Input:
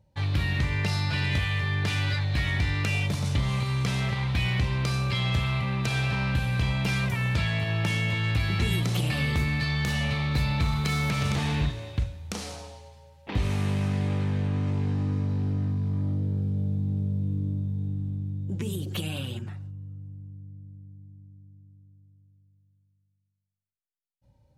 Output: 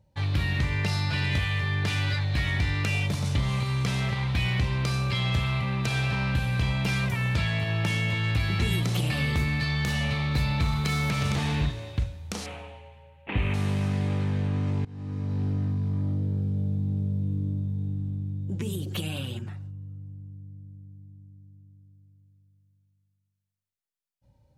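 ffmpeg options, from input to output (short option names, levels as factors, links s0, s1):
-filter_complex "[0:a]asettb=1/sr,asplit=3[s0][s1][s2];[s0]atrim=end=12.464[s3];[s1]atrim=start=12.46:end=13.54,asetpts=PTS-STARTPTS,afade=t=in:d=0.004:c=qsin,afade=t=out:st=1.076:d=0.004:c=qsin,highshelf=f=3700:t=q:w=3:g=-12[s4];[s2]atrim=start=13.536[s5];[s3][s4]acrossfade=d=0.004:c1=hsin:c2=qsin[s6];[s6][s5]acrossfade=d=0.004:c1=qsin:c2=hsin,asplit=2[s7][s8];[s7]atrim=end=14.85,asetpts=PTS-STARTPTS,afade=t=out:st=14.846:d=0.004:c=hsin:silence=0.0749894[s9];[s8]atrim=start=14.85,asetpts=PTS-STARTPTS,afade=t=in:d=0.57:silence=0.0749894[s10];[s9][s10]concat=n=2:v=0:a=1"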